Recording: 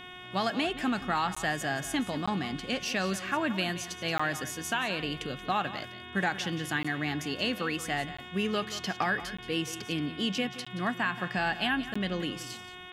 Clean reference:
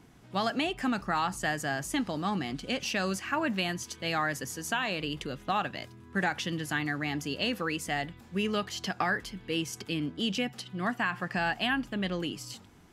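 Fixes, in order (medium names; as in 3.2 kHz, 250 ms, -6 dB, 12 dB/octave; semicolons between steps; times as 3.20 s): de-hum 363.3 Hz, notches 10; interpolate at 1.35/2.26/4.18/6.83/8.17/9.37/10.65/11.94 s, 15 ms; inverse comb 177 ms -14 dB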